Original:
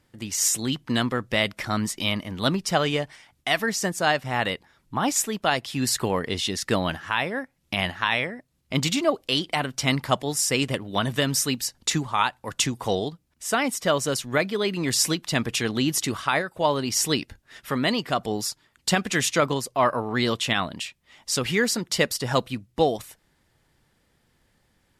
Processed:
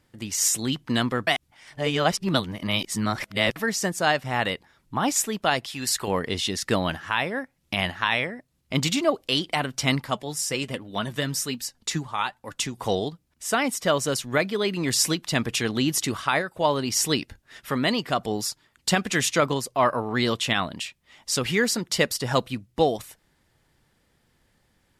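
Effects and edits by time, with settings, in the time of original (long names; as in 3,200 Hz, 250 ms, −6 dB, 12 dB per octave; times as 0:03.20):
0:01.27–0:03.56: reverse
0:05.66–0:06.08: parametric band 170 Hz −10 dB 2.9 octaves
0:10.01–0:12.78: flanger 1.2 Hz, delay 3.3 ms, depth 3.6 ms, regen +60%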